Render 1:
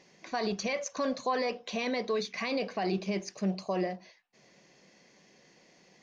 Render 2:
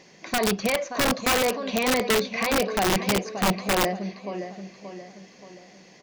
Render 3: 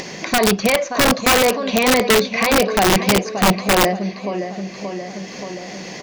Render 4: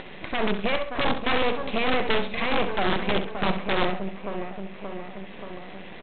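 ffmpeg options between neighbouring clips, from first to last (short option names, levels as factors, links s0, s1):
-filter_complex "[0:a]acrossover=split=3500[s0][s1];[s1]acompressor=threshold=0.00251:ratio=4:attack=1:release=60[s2];[s0][s2]amix=inputs=2:normalize=0,aecho=1:1:578|1156|1734|2312|2890:0.299|0.131|0.0578|0.0254|0.0112,aeval=exprs='(mod(15.8*val(0)+1,2)-1)/15.8':c=same,volume=2.66"
-af "acompressor=mode=upward:threshold=0.0398:ratio=2.5,volume=2.51"
-af "aresample=8000,aeval=exprs='max(val(0),0)':c=same,aresample=44100,aecho=1:1:66|132|198:0.316|0.0885|0.0248,volume=0.562"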